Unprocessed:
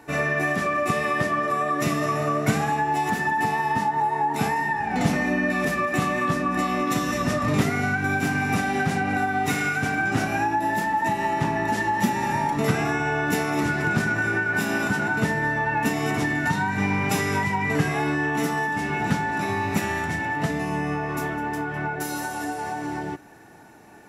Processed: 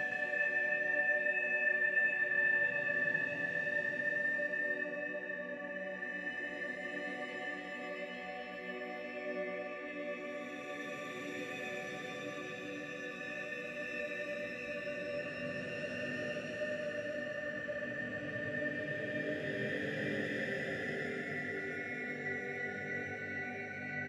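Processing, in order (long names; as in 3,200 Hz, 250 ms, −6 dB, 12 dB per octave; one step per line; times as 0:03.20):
phase shifter 0.11 Hz, delay 1.8 ms, feedback 60%
formant filter e
extreme stretch with random phases 13×, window 0.25 s, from 0:06.06
on a send: single-tap delay 116 ms −4.5 dB
on the sum: level −2.5 dB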